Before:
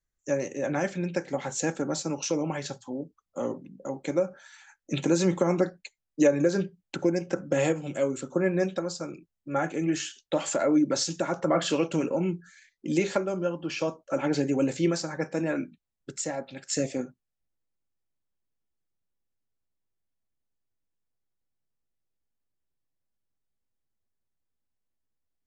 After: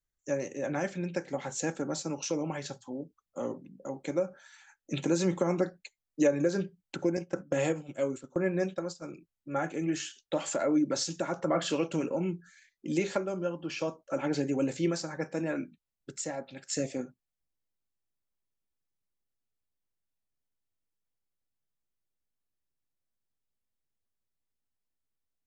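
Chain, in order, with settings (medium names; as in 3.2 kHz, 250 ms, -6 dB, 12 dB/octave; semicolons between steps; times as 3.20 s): 7.17–9.04 s: gate -32 dBFS, range -11 dB; trim -4 dB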